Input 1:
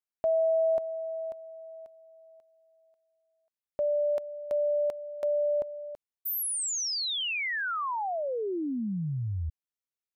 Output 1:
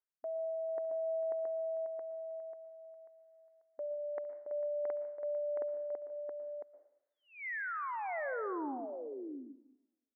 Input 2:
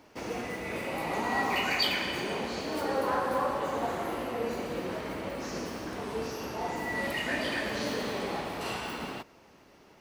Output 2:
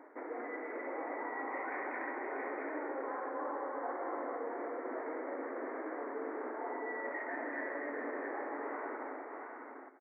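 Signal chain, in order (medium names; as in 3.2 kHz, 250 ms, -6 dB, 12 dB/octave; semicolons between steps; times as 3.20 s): fade out at the end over 2.94 s; steep low-pass 2.1 kHz 96 dB/octave; reverse; compression 12:1, threshold -41 dBFS; reverse; brick-wall FIR high-pass 250 Hz; on a send: multi-tap echo 69/149/448/672 ms -20/-19.5/-16.5/-4 dB; on the sum: plate-style reverb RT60 0.77 s, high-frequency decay 0.8×, pre-delay 105 ms, DRR 12.5 dB; trim +3.5 dB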